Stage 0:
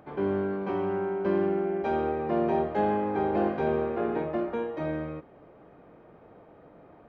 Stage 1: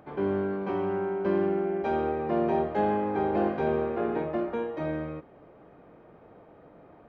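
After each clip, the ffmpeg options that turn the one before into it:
-af anull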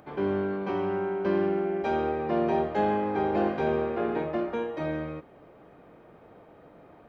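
-af "highshelf=f=2.9k:g=8.5"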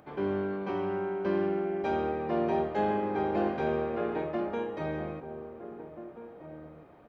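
-filter_complex "[0:a]asplit=2[a][b];[b]adelay=1633,volume=-11dB,highshelf=f=4k:g=-36.7[c];[a][c]amix=inputs=2:normalize=0,volume=-3dB"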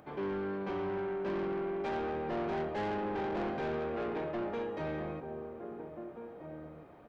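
-af "asoftclip=type=tanh:threshold=-31.5dB"

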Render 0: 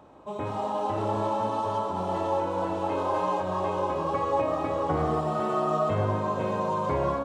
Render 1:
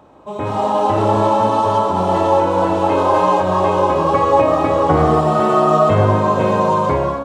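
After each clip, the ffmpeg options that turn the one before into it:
-af "dynaudnorm=f=100:g=9:m=7.5dB,volume=5.5dB"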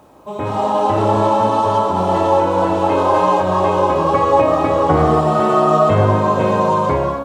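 -af "acrusher=bits=9:mix=0:aa=0.000001"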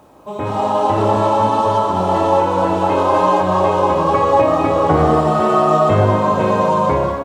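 -af "aecho=1:1:199:0.299"

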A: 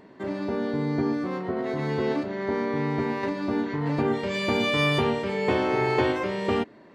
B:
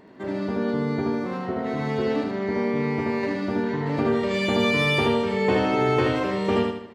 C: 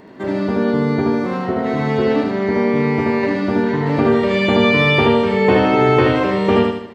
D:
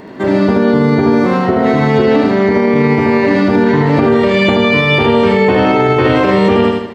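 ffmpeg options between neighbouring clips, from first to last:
-af "aecho=1:1:77|154|231|308|385|462:0.708|0.311|0.137|0.0603|0.0265|0.0117"
-filter_complex "[0:a]acrossover=split=4100[a][b];[b]acompressor=threshold=-55dB:ratio=4:attack=1:release=60[c];[a][c]amix=inputs=2:normalize=0,volume=8dB"
-af "alimiter=level_in=10.5dB:limit=-1dB:release=50:level=0:latency=1,volume=-1.5dB"

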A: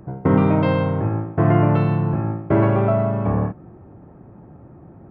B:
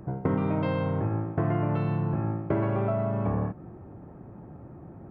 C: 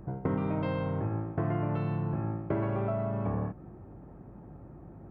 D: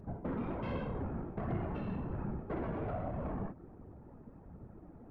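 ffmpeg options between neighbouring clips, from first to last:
-af "acompressor=threshold=-23dB:ratio=4,volume=-1.5dB"
-af "aeval=exprs='val(0)+0.00316*(sin(2*PI*50*n/s)+sin(2*PI*2*50*n/s)/2+sin(2*PI*3*50*n/s)/3+sin(2*PI*4*50*n/s)/4+sin(2*PI*5*50*n/s)/5)':c=same,volume=-4dB"
-af "afftfilt=real='hypot(re,im)*cos(2*PI*random(0))':imag='hypot(re,im)*sin(2*PI*random(1))':win_size=512:overlap=0.75,asoftclip=type=tanh:threshold=-32dB,aphaser=in_gain=1:out_gain=1:delay=4.8:decay=0.26:speed=1.3:type=triangular,volume=1dB"

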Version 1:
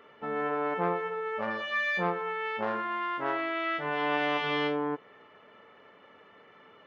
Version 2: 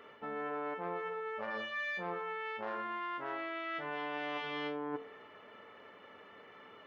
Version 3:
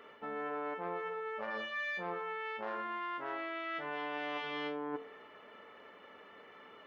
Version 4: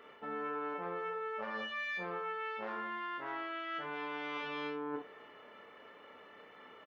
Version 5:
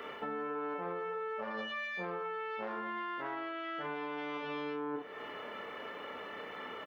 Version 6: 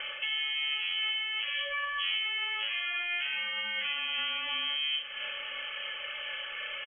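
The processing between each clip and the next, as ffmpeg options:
-af "equalizer=f=160:w=5.1:g=-5.5,bandreject=f=55.69:t=h:w=4,bandreject=f=111.38:t=h:w=4,bandreject=f=167.07:t=h:w=4,bandreject=f=222.76:t=h:w=4,bandreject=f=278.45:t=h:w=4,bandreject=f=334.14:t=h:w=4,bandreject=f=389.83:t=h:w=4,bandreject=f=445.52:t=h:w=4,bandreject=f=501.21:t=h:w=4,bandreject=f=556.9:t=h:w=4,bandreject=f=612.59:t=h:w=4,bandreject=f=668.28:t=h:w=4,bandreject=f=723.97:t=h:w=4,bandreject=f=779.66:t=h:w=4,bandreject=f=835.35:t=h:w=4,bandreject=f=891.04:t=h:w=4,bandreject=f=946.73:t=h:w=4,bandreject=f=1.00242k:t=h:w=4,bandreject=f=1.05811k:t=h:w=4,bandreject=f=1.1138k:t=h:w=4,bandreject=f=1.16949k:t=h:w=4,bandreject=f=1.22518k:t=h:w=4,bandreject=f=1.28087k:t=h:w=4,bandreject=f=1.33656k:t=h:w=4,bandreject=f=1.39225k:t=h:w=4,bandreject=f=1.44794k:t=h:w=4,bandreject=f=1.50363k:t=h:w=4,areverse,acompressor=threshold=-37dB:ratio=6,areverse,volume=1dB"
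-af "equalizer=f=110:w=1.5:g=-6"
-af "aecho=1:1:28|59:0.473|0.335,volume=-1.5dB"
-filter_complex "[0:a]acrossover=split=220|880[a][b][c];[c]alimiter=level_in=15.5dB:limit=-24dB:level=0:latency=1:release=34,volume=-15.5dB[d];[a][b][d]amix=inputs=3:normalize=0,acompressor=threshold=-51dB:ratio=3,volume=12dB"
-af "aphaser=in_gain=1:out_gain=1:delay=3.3:decay=0.2:speed=0.95:type=sinusoidal,aecho=1:1:969:0.178,lowpass=f=3k:t=q:w=0.5098,lowpass=f=3k:t=q:w=0.6013,lowpass=f=3k:t=q:w=0.9,lowpass=f=3k:t=q:w=2.563,afreqshift=-3500,volume=5.5dB"

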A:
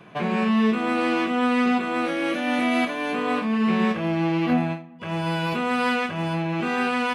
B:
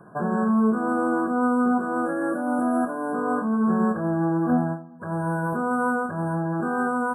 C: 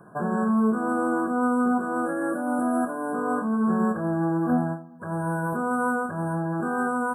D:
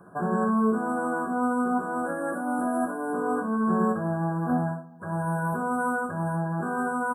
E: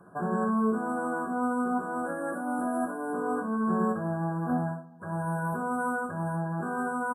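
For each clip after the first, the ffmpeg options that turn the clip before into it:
-af "afftfilt=real='re*(1-between(b*sr/4096,1700,7500))':imag='im*(1-between(b*sr/4096,1700,7500))':win_size=4096:overlap=0.75"
-af "highshelf=f=4.1k:g=6,volume=-1.5dB"
-af "aecho=1:1:11|59:0.473|0.376,volume=-2dB"
-af "aresample=32000,aresample=44100,volume=-3dB"

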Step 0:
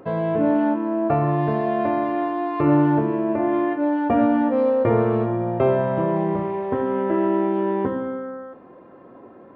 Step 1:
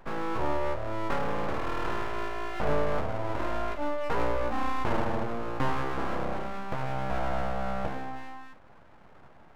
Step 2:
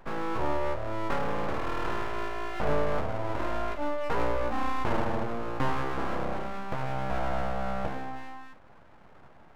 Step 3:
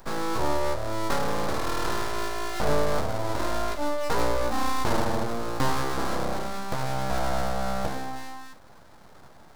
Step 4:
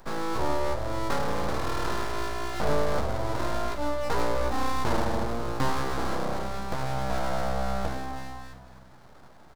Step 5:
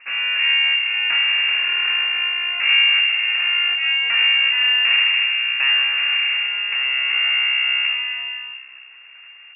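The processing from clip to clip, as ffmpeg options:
-af "aeval=exprs='abs(val(0))':c=same,volume=-6.5dB"
-af anull
-af "aexciter=amount=3.2:drive=7.6:freq=3.8k,volume=3dB"
-filter_complex "[0:a]highshelf=f=5.7k:g=-5,asplit=2[a][b];[b]asplit=4[c][d][e][f];[c]adelay=252,afreqshift=-64,volume=-14dB[g];[d]adelay=504,afreqshift=-128,volume=-22.2dB[h];[e]adelay=756,afreqshift=-192,volume=-30.4dB[i];[f]adelay=1008,afreqshift=-256,volume=-38.5dB[j];[g][h][i][j]amix=inputs=4:normalize=0[k];[a][k]amix=inputs=2:normalize=0,volume=-1.5dB"
-af "lowpass=f=2.4k:t=q:w=0.5098,lowpass=f=2.4k:t=q:w=0.6013,lowpass=f=2.4k:t=q:w=0.9,lowpass=f=2.4k:t=q:w=2.563,afreqshift=-2800,highshelf=f=2.2k:g=11.5"

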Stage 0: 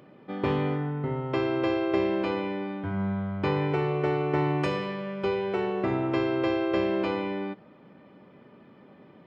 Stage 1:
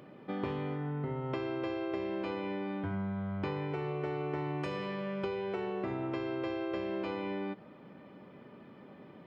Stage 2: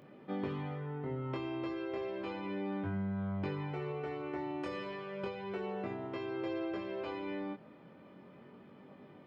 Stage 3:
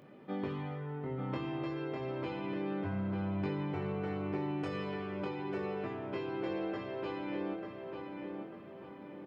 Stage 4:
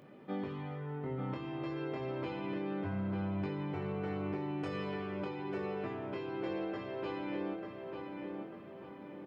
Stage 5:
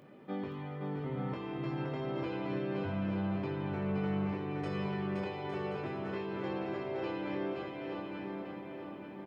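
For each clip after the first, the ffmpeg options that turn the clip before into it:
-af "acompressor=threshold=-33dB:ratio=6"
-af "flanger=delay=20:depth=3.9:speed=0.33"
-filter_complex "[0:a]asplit=2[a][b];[b]adelay=893,lowpass=f=2.8k:p=1,volume=-4.5dB,asplit=2[c][d];[d]adelay=893,lowpass=f=2.8k:p=1,volume=0.48,asplit=2[e][f];[f]adelay=893,lowpass=f=2.8k:p=1,volume=0.48,asplit=2[g][h];[h]adelay=893,lowpass=f=2.8k:p=1,volume=0.48,asplit=2[i][j];[j]adelay=893,lowpass=f=2.8k:p=1,volume=0.48,asplit=2[k][l];[l]adelay=893,lowpass=f=2.8k:p=1,volume=0.48[m];[a][c][e][g][i][k][m]amix=inputs=7:normalize=0"
-af "alimiter=level_in=4dB:limit=-24dB:level=0:latency=1:release=495,volume=-4dB"
-af "aecho=1:1:520|858|1078|1221|1313:0.631|0.398|0.251|0.158|0.1"

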